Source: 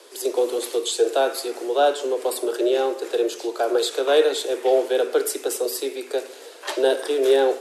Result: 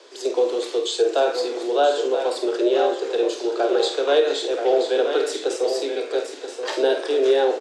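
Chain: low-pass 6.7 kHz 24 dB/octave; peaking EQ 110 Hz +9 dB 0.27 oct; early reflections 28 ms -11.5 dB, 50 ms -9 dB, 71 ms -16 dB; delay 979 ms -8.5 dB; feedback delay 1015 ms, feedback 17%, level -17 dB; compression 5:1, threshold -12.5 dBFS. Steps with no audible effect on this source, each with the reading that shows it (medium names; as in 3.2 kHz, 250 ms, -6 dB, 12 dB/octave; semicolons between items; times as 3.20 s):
peaking EQ 110 Hz: input has nothing below 240 Hz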